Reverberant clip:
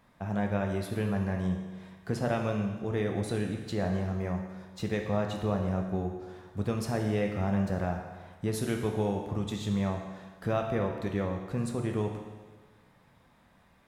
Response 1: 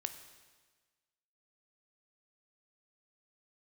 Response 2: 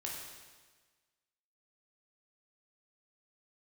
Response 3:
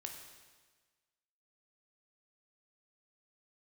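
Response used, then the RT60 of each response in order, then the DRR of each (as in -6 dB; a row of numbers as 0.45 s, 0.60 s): 3; 1.4 s, 1.4 s, 1.4 s; 8.0 dB, -3.0 dB, 2.0 dB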